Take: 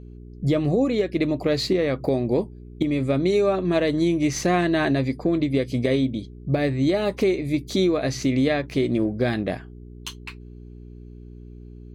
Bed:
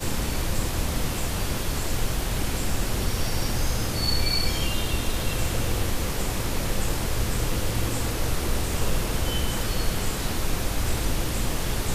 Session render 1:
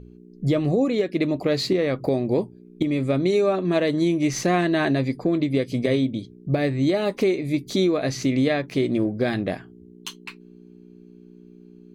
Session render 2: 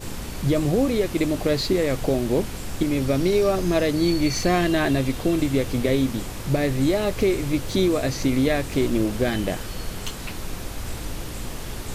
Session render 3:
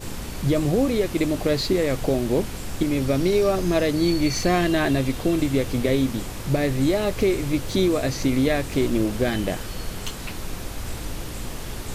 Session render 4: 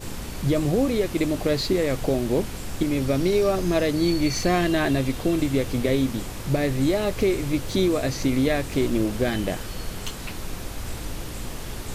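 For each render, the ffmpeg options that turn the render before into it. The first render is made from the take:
-af "bandreject=f=60:t=h:w=4,bandreject=f=120:t=h:w=4"
-filter_complex "[1:a]volume=-6dB[a];[0:a][a]amix=inputs=2:normalize=0"
-af anull
-af "volume=-1dB"

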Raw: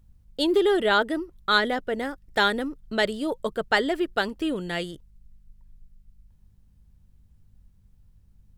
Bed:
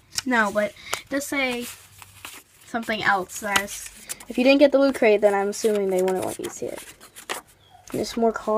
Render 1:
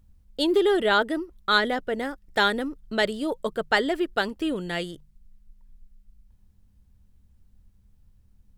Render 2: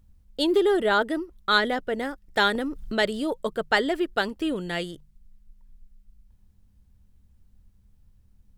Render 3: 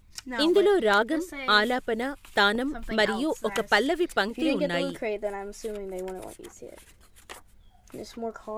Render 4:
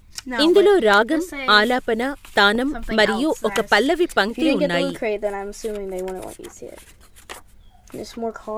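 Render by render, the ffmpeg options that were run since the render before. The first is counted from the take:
-af "bandreject=f=50:t=h:w=4,bandreject=f=100:t=h:w=4,bandreject=f=150:t=h:w=4"
-filter_complex "[0:a]asettb=1/sr,asplit=3[a][b][c];[a]atrim=end=0.604[d];[b]atrim=start=0.6:end=1.01,asetpts=PTS-STARTPTS,afade=t=in:d=0.004:c=qsin,afade=t=out:st=0.406:d=0.004:c=qsin,equalizer=f=3k:t=o:w=1.2:g=-5[e];[c]atrim=start=1.006[f];[d][e]acrossfade=d=0.004:c1=hsin:c2=qsin[g];[g][f]acrossfade=d=0.004:c1=qsin:c2=hsin,asettb=1/sr,asplit=3[h][i][j];[h]atrim=end=2.554[k];[i]atrim=start=2.55:end=3.34,asetpts=PTS-STARTPTS,afade=t=in:d=0.004:c=qsin,afade=t=out:st=0.786:d=0.004:c=qsin,acompressor=mode=upward:threshold=-24dB:ratio=2.5:attack=3.2:release=140:knee=2.83:detection=peak[l];[j]atrim=start=3.336[m];[k][l]acrossfade=d=0.004:c1=hsin:c2=qsin[n];[n][m]acrossfade=d=0.004:c1=qsin:c2=hsin"
-filter_complex "[1:a]volume=-13dB[a];[0:a][a]amix=inputs=2:normalize=0"
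-af "volume=7dB,alimiter=limit=-2dB:level=0:latency=1"

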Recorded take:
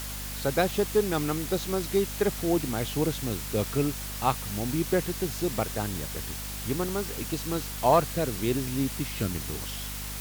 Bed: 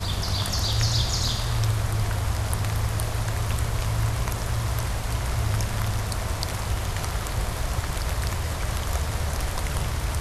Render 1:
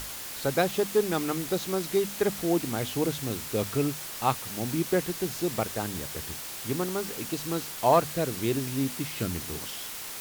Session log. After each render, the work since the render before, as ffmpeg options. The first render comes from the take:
-af "bandreject=f=50:t=h:w=6,bandreject=f=100:t=h:w=6,bandreject=f=150:t=h:w=6,bandreject=f=200:t=h:w=6,bandreject=f=250:t=h:w=6"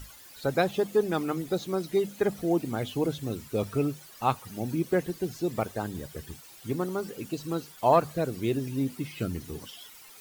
-af "afftdn=nr=15:nf=-38"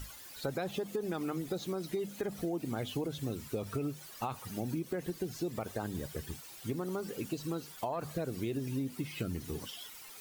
-af "alimiter=limit=-21dB:level=0:latency=1:release=49,acompressor=threshold=-32dB:ratio=6"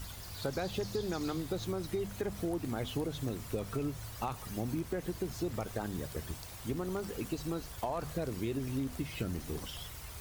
-filter_complex "[1:a]volume=-21.5dB[a];[0:a][a]amix=inputs=2:normalize=0"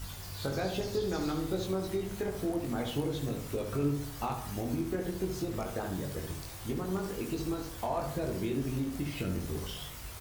-filter_complex "[0:a]asplit=2[a][b];[b]adelay=21,volume=-3.5dB[c];[a][c]amix=inputs=2:normalize=0,asplit=2[d][e];[e]adelay=70,lowpass=f=2k:p=1,volume=-5.5dB,asplit=2[f][g];[g]adelay=70,lowpass=f=2k:p=1,volume=0.5,asplit=2[h][i];[i]adelay=70,lowpass=f=2k:p=1,volume=0.5,asplit=2[j][k];[k]adelay=70,lowpass=f=2k:p=1,volume=0.5,asplit=2[l][m];[m]adelay=70,lowpass=f=2k:p=1,volume=0.5,asplit=2[n][o];[o]adelay=70,lowpass=f=2k:p=1,volume=0.5[p];[d][f][h][j][l][n][p]amix=inputs=7:normalize=0"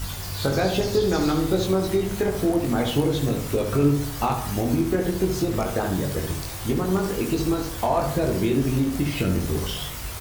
-af "volume=11dB"

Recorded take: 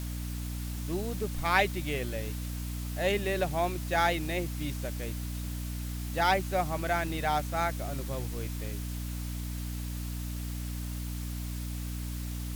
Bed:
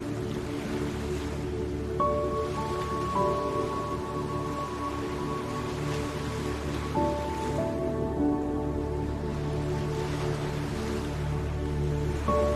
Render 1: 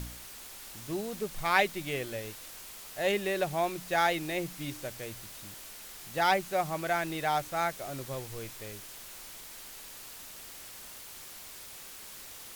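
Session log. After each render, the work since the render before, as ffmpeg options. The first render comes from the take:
-af "bandreject=f=60:t=h:w=4,bandreject=f=120:t=h:w=4,bandreject=f=180:t=h:w=4,bandreject=f=240:t=h:w=4,bandreject=f=300:t=h:w=4"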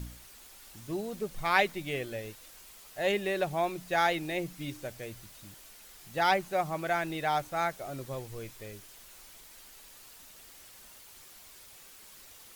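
-af "afftdn=nr=7:nf=-47"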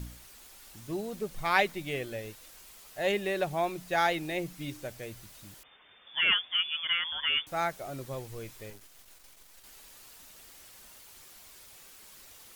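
-filter_complex "[0:a]asettb=1/sr,asplit=3[a][b][c];[a]atrim=end=5.634[d];[b]atrim=start=5.63:end=7.47,asetpts=PTS-STARTPTS,afade=t=in:d=0.004:c=qsin,afade=t=out:st=1.836:d=0.004:c=qsin,lowpass=f=3.1k:t=q:w=0.5098,lowpass=f=3.1k:t=q:w=0.6013,lowpass=f=3.1k:t=q:w=0.9,lowpass=f=3.1k:t=q:w=2.563,afreqshift=-3600[e];[c]atrim=start=7.466[f];[d][e]acrossfade=d=0.004:c1=hsin:c2=qsin[g];[g][f]acrossfade=d=0.004:c1=qsin:c2=hsin,asettb=1/sr,asplit=3[h][i][j];[h]atrim=end=8.704[k];[i]atrim=start=8.7:end=9.64,asetpts=PTS-STARTPTS,afade=t=in:d=0.004:c=qsin,afade=t=out:st=0.936:d=0.004:c=qsin,aeval=exprs='max(val(0),0)':c=same[l];[j]atrim=start=9.636[m];[k][l]acrossfade=d=0.004:c1=hsin:c2=qsin[n];[n][m]acrossfade=d=0.004:c1=qsin:c2=hsin"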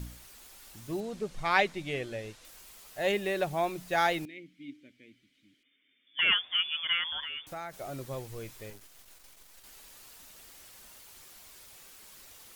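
-filter_complex "[0:a]asettb=1/sr,asplit=3[a][b][c];[a]atrim=end=1.004[d];[b]atrim=start=1:end=2.45,asetpts=PTS-STARTPTS,afade=t=in:d=0.004:c=qsin,afade=t=out:st=1.446:d=0.004:c=qsin,lowpass=7.6k[e];[c]atrim=start=2.446[f];[d][e]acrossfade=d=0.004:c1=hsin:c2=qsin[g];[g][f]acrossfade=d=0.004:c1=qsin:c2=hsin,asettb=1/sr,asplit=3[h][i][j];[h]atrim=end=4.254[k];[i]atrim=start=4.25:end=6.19,asetpts=PTS-STARTPTS,afade=t=in:d=0.004:c=qsin,afade=t=out:st=1.936:d=0.004:c=qsin,asplit=3[l][m][n];[l]bandpass=f=270:t=q:w=8,volume=0dB[o];[m]bandpass=f=2.29k:t=q:w=8,volume=-6dB[p];[n]bandpass=f=3.01k:t=q:w=8,volume=-9dB[q];[o][p][q]amix=inputs=3:normalize=0[r];[j]atrim=start=6.186[s];[k][r]acrossfade=d=0.004:c1=hsin:c2=qsin[t];[t][s]acrossfade=d=0.004:c1=qsin:c2=hsin,asettb=1/sr,asplit=3[u][v][w];[u]atrim=end=7.224[x];[v]atrim=start=7.22:end=7.74,asetpts=PTS-STARTPTS,afade=t=in:d=0.004:c=qsin,afade=t=out:st=0.516:d=0.004:c=qsin,acompressor=threshold=-37dB:ratio=4:attack=3.2:release=140:knee=1:detection=peak[y];[w]atrim=start=7.736[z];[x][y]acrossfade=d=0.004:c1=hsin:c2=qsin[aa];[aa][z]acrossfade=d=0.004:c1=qsin:c2=hsin"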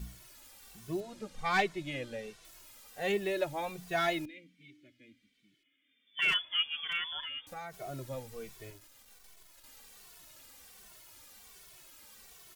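-filter_complex "[0:a]aeval=exprs='clip(val(0),-1,0.119)':c=same,asplit=2[a][b];[b]adelay=2.2,afreqshift=-1.3[c];[a][c]amix=inputs=2:normalize=1"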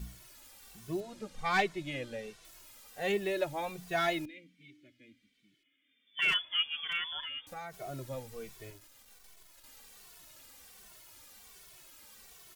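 -af anull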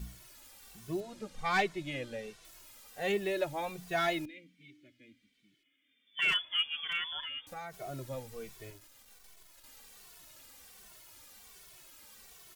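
-af "asoftclip=type=tanh:threshold=-15dB"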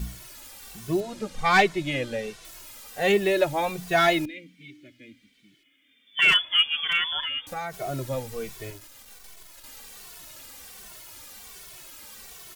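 -af "volume=10.5dB"

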